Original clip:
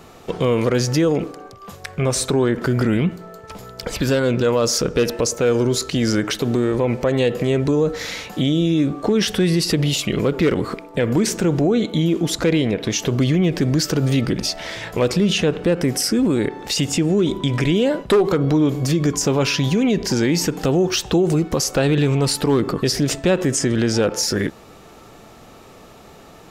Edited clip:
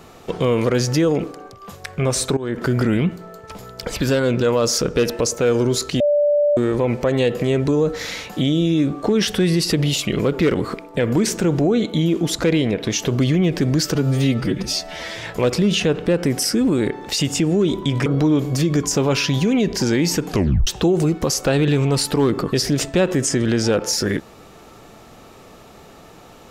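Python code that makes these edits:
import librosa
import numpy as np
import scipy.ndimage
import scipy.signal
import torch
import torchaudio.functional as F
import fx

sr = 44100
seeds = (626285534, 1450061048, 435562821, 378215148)

y = fx.edit(x, sr, fx.fade_in_from(start_s=2.37, length_s=0.27, floor_db=-18.0),
    fx.bleep(start_s=6.0, length_s=0.57, hz=586.0, db=-13.0),
    fx.stretch_span(start_s=13.95, length_s=0.84, factor=1.5),
    fx.cut(start_s=17.64, length_s=0.72),
    fx.tape_stop(start_s=20.6, length_s=0.37), tone=tone)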